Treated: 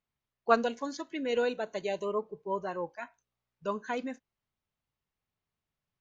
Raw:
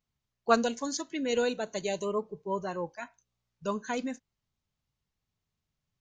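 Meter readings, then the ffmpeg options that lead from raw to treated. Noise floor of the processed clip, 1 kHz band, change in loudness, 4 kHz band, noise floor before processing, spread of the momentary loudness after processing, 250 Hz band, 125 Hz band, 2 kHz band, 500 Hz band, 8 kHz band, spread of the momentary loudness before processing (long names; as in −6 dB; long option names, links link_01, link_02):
below −85 dBFS, 0.0 dB, −1.0 dB, −5.0 dB, below −85 dBFS, 13 LU, −3.5 dB, −5.0 dB, −0.5 dB, −0.5 dB, below −10 dB, 13 LU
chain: -filter_complex "[0:a]acrossover=split=6800[link_01][link_02];[link_02]acompressor=threshold=-55dB:ratio=4:attack=1:release=60[link_03];[link_01][link_03]amix=inputs=2:normalize=0,bass=frequency=250:gain=-7,treble=frequency=4000:gain=-11"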